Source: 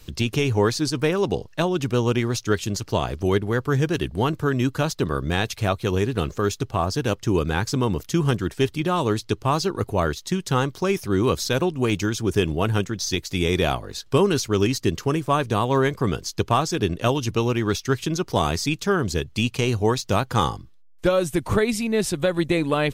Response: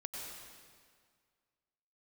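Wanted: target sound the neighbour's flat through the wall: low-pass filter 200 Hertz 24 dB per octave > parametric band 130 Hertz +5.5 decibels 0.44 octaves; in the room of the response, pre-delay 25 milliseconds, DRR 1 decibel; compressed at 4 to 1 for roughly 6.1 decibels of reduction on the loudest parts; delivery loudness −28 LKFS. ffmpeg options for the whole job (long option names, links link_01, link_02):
-filter_complex "[0:a]acompressor=threshold=-22dB:ratio=4,asplit=2[link_01][link_02];[1:a]atrim=start_sample=2205,adelay=25[link_03];[link_02][link_03]afir=irnorm=-1:irlink=0,volume=-0.5dB[link_04];[link_01][link_04]amix=inputs=2:normalize=0,lowpass=frequency=200:width=0.5412,lowpass=frequency=200:width=1.3066,equalizer=frequency=130:width_type=o:width=0.44:gain=5.5,volume=-0.5dB"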